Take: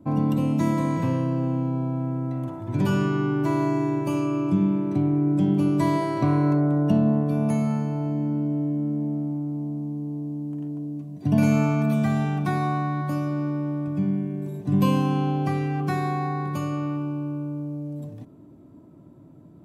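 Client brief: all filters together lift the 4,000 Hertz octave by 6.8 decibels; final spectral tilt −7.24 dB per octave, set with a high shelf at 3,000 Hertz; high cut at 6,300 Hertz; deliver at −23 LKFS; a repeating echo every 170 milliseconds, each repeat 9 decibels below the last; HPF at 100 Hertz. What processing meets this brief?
high-pass filter 100 Hz
low-pass filter 6,300 Hz
high-shelf EQ 3,000 Hz +4.5 dB
parametric band 4,000 Hz +6.5 dB
repeating echo 170 ms, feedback 35%, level −9 dB
level +0.5 dB

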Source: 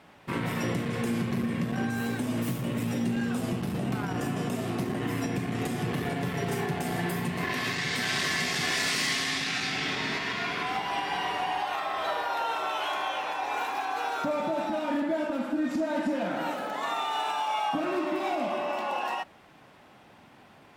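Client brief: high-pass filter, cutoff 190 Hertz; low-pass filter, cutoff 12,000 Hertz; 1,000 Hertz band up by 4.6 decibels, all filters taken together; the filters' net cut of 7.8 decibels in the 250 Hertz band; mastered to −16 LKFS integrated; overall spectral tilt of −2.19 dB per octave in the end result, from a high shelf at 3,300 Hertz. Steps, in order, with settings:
high-pass filter 190 Hz
low-pass filter 12,000 Hz
parametric band 250 Hz −8.5 dB
parametric band 1,000 Hz +6 dB
high-shelf EQ 3,300 Hz +5 dB
level +12 dB

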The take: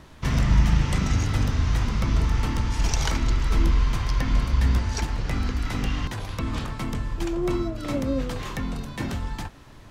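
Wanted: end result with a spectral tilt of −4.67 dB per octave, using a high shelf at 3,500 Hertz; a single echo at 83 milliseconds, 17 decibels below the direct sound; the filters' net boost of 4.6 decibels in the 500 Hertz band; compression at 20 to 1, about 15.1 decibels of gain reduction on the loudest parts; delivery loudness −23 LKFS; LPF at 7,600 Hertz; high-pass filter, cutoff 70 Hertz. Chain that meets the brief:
high-pass filter 70 Hz
low-pass filter 7,600 Hz
parametric band 500 Hz +6 dB
high-shelf EQ 3,500 Hz +9 dB
downward compressor 20 to 1, threshold −32 dBFS
single-tap delay 83 ms −17 dB
level +14 dB

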